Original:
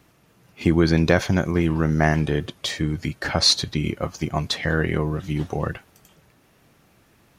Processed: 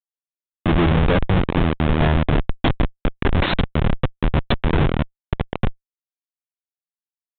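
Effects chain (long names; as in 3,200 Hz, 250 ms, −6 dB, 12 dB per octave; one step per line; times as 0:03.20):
comparator with hysteresis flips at −20 dBFS
downsampling to 8,000 Hz
level +8.5 dB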